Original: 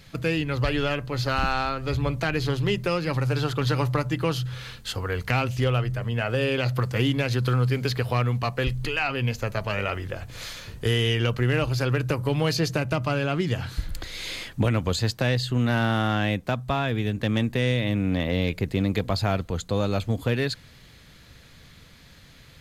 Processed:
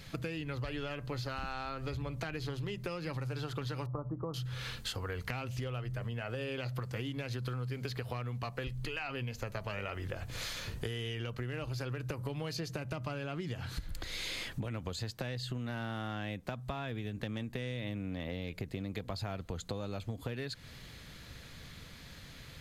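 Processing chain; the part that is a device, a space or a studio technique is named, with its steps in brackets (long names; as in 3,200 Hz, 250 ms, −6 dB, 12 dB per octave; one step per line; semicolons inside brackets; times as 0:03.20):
0:03.86–0:04.34: elliptic low-pass filter 1,200 Hz, stop band 50 dB
serial compression, leveller first (downward compressor 2 to 1, threshold −27 dBFS, peak gain reduction 5.5 dB; downward compressor 5 to 1, threshold −36 dBFS, peak gain reduction 12.5 dB)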